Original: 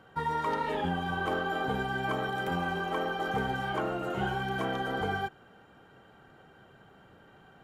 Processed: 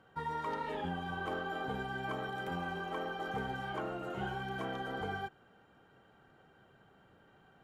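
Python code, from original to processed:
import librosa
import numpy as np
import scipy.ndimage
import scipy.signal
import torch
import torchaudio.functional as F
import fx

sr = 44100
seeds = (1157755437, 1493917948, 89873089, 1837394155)

y = fx.high_shelf(x, sr, hz=10000.0, db=-4.0)
y = F.gain(torch.from_numpy(y), -7.0).numpy()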